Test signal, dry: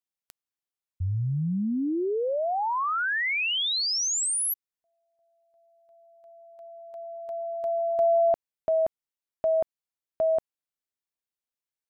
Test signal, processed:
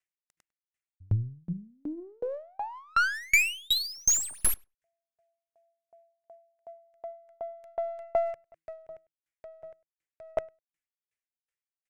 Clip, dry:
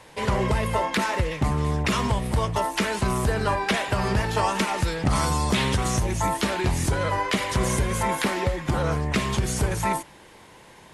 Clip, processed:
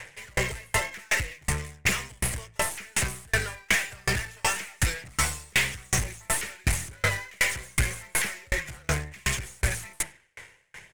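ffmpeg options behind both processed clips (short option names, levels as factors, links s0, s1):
-filter_complex "[0:a]bandreject=f=162.6:t=h:w=4,bandreject=f=325.2:t=h:w=4,acrossover=split=3600[s0][s1];[s1]acompressor=threshold=0.0141:ratio=4:attack=1:release=60[s2];[s0][s2]amix=inputs=2:normalize=0,equalizer=f=125:t=o:w=1:g=3,equalizer=f=250:t=o:w=1:g=-12,equalizer=f=1000:t=o:w=1:g=-11,equalizer=f=2000:t=o:w=1:g=9,equalizer=f=4000:t=o:w=1:g=-12,equalizer=f=8000:t=o:w=1:g=4,aphaser=in_gain=1:out_gain=1:delay=2.2:decay=0.25:speed=1:type=sinusoidal,crystalizer=i=9.5:c=0,aeval=exprs='(tanh(7.94*val(0)+0.6)-tanh(0.6))/7.94':c=same,adynamicsmooth=sensitivity=7.5:basefreq=2500,aeval=exprs='0.2*(cos(1*acos(clip(val(0)/0.2,-1,1)))-cos(1*PI/2))+0.0562*(cos(2*acos(clip(val(0)/0.2,-1,1)))-cos(2*PI/2))':c=same,asplit=2[s3][s4];[s4]adelay=101,lowpass=f=4000:p=1,volume=0.126,asplit=2[s5][s6];[s6]adelay=101,lowpass=f=4000:p=1,volume=0.24[s7];[s3][s5][s7]amix=inputs=3:normalize=0,aeval=exprs='val(0)*pow(10,-37*if(lt(mod(2.7*n/s,1),2*abs(2.7)/1000),1-mod(2.7*n/s,1)/(2*abs(2.7)/1000),(mod(2.7*n/s,1)-2*abs(2.7)/1000)/(1-2*abs(2.7)/1000))/20)':c=same,volume=2.24"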